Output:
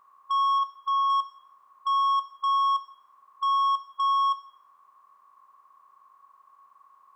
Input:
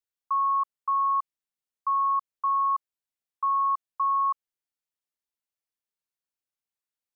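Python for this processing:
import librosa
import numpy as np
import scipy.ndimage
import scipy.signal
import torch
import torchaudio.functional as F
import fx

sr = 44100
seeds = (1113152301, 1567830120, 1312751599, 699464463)

y = fx.bin_compress(x, sr, power=0.4)
y = fx.dynamic_eq(y, sr, hz=1000.0, q=3.3, threshold_db=-40.0, ratio=4.0, max_db=-3, at=(0.58, 1.1))
y = 10.0 ** (-27.0 / 20.0) * np.tanh(y / 10.0 ** (-27.0 / 20.0))
y = fx.rev_plate(y, sr, seeds[0], rt60_s=0.72, hf_ratio=0.85, predelay_ms=0, drr_db=11.5)
y = F.gain(torch.from_numpy(y), 4.0).numpy()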